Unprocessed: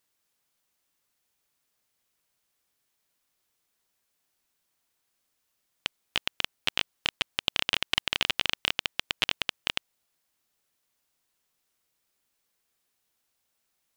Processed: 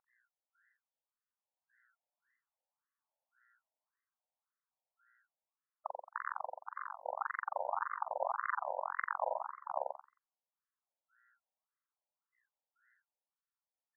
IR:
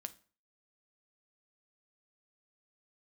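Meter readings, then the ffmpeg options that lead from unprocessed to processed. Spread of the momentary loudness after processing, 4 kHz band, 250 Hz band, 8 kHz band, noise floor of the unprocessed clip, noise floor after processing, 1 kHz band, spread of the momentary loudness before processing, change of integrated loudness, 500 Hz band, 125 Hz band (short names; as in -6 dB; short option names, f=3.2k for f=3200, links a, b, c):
9 LU, under -40 dB, under -40 dB, under -35 dB, -78 dBFS, under -85 dBFS, +4.0 dB, 5 LU, -10.5 dB, +3.0 dB, under -40 dB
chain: -filter_complex "[0:a]aeval=exprs='0.668*(cos(1*acos(clip(val(0)/0.668,-1,1)))-cos(1*PI/2))+0.0668*(cos(4*acos(clip(val(0)/0.668,-1,1)))-cos(4*PI/2))+0.075*(cos(7*acos(clip(val(0)/0.668,-1,1)))-cos(7*PI/2))+0.0944*(cos(8*acos(clip(val(0)/0.668,-1,1)))-cos(8*PI/2))':c=same,dynaudnorm=f=240:g=17:m=9.5dB,lowpass=f=2k:w=0.5412,lowpass=f=2k:w=1.3066,aeval=exprs='val(0)+0.00282*(sin(2*PI*60*n/s)+sin(2*PI*2*60*n/s)/2+sin(2*PI*3*60*n/s)/3+sin(2*PI*4*60*n/s)/4+sin(2*PI*5*60*n/s)/5)':c=same,acrusher=samples=18:mix=1:aa=0.000001:lfo=1:lforange=18:lforate=0.65,asplit=2[a][b];[b]adelay=43,volume=-2dB[c];[a][c]amix=inputs=2:normalize=0,asplit=2[d][e];[e]aecho=0:1:89|178|267|356:0.631|0.17|0.046|0.0124[f];[d][f]amix=inputs=2:normalize=0,afftfilt=real='re*between(b*sr/1024,680*pow(1500/680,0.5+0.5*sin(2*PI*1.8*pts/sr))/1.41,680*pow(1500/680,0.5+0.5*sin(2*PI*1.8*pts/sr))*1.41)':imag='im*between(b*sr/1024,680*pow(1500/680,0.5+0.5*sin(2*PI*1.8*pts/sr))/1.41,680*pow(1500/680,0.5+0.5*sin(2*PI*1.8*pts/sr))*1.41)':win_size=1024:overlap=0.75,volume=-3dB"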